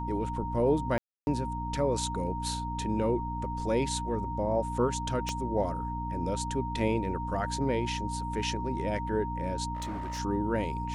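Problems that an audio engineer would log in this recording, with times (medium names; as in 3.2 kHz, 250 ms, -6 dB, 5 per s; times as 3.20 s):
hum 60 Hz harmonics 5 -36 dBFS
whine 930 Hz -35 dBFS
0.98–1.27 s: dropout 291 ms
5.29 s: pop -18 dBFS
9.74–10.20 s: clipped -32 dBFS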